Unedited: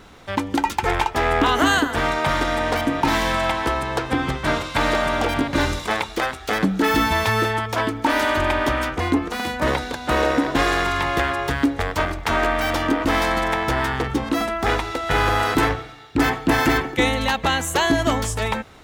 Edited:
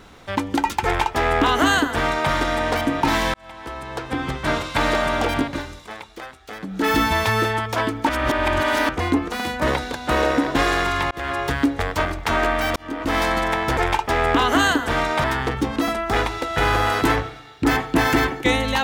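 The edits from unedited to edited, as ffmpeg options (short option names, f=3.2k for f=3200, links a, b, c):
-filter_complex "[0:a]asplit=10[a][b][c][d][e][f][g][h][i][j];[a]atrim=end=3.34,asetpts=PTS-STARTPTS,afade=t=out:st=3.336:d=0.004:c=hsin[k];[b]atrim=start=3.34:end=5.63,asetpts=PTS-STARTPTS,afade=t=in:d=1.25,afade=t=out:st=2.07:d=0.22:silence=0.223872[l];[c]atrim=start=5.63:end=6.67,asetpts=PTS-STARTPTS,volume=-13dB[m];[d]atrim=start=6.67:end=8.092,asetpts=PTS-STARTPTS,afade=t=in:d=0.22:silence=0.223872[n];[e]atrim=start=8.088:end=8.892,asetpts=PTS-STARTPTS,areverse[o];[f]atrim=start=8.888:end=11.11,asetpts=PTS-STARTPTS,afade=t=out:st=2.218:d=0.004:c=hsin[p];[g]atrim=start=11.11:end=12.76,asetpts=PTS-STARTPTS,afade=t=in:d=0.25,afade=t=out:st=1.646:d=0.004:c=hsin[q];[h]atrim=start=12.76:end=13.772,asetpts=PTS-STARTPTS,afade=t=in:d=0.45[r];[i]atrim=start=0.838:end=2.312[s];[j]atrim=start=13.768[t];[k][l][m][n]concat=n=4:v=0:a=1[u];[u][o]acrossfade=d=0.004:c1=hsin:c2=hsin[v];[p][q][r]concat=n=3:v=0:a=1[w];[v][w]acrossfade=d=0.004:c1=hsin:c2=hsin[x];[x][s]acrossfade=d=0.004:c1=hsin:c2=hsin[y];[y][t]acrossfade=d=0.004:c1=hsin:c2=hsin"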